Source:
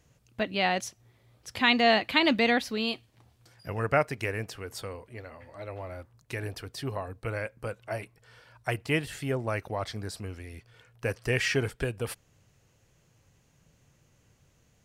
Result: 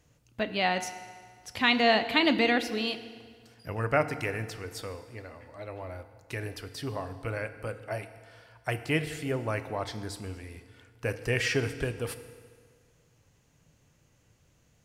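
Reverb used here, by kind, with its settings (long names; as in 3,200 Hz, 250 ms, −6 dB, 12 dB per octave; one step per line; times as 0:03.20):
feedback delay network reverb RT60 1.8 s, low-frequency decay 1×, high-frequency decay 0.85×, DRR 10 dB
level −1 dB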